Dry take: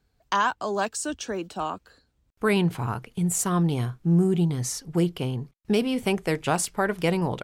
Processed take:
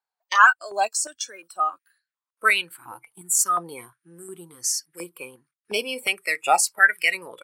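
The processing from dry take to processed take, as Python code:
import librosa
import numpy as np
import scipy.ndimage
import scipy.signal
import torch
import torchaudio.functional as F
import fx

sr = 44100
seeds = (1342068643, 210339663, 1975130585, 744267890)

y = fx.noise_reduce_blind(x, sr, reduce_db=23)
y = fx.filter_held_highpass(y, sr, hz=2.8, low_hz=880.0, high_hz=1800.0)
y = y * librosa.db_to_amplitude(6.5)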